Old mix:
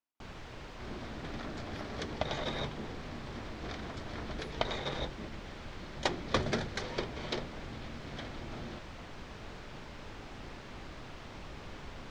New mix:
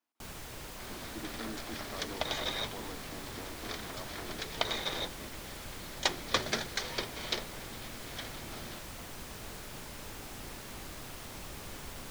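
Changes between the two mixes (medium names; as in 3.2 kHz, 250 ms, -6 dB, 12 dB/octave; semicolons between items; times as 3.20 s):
speech +8.0 dB; first sound: remove distance through air 170 m; second sound: add tilt EQ +3 dB/octave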